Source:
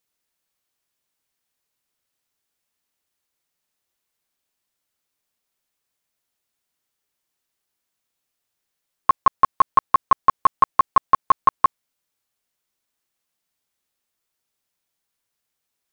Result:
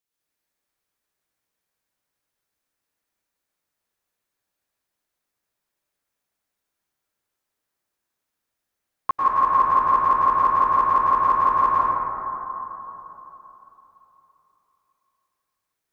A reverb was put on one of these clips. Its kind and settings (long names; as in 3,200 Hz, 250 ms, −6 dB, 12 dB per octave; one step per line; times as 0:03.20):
dense smooth reverb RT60 3.5 s, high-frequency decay 0.25×, pre-delay 90 ms, DRR −8.5 dB
level −8.5 dB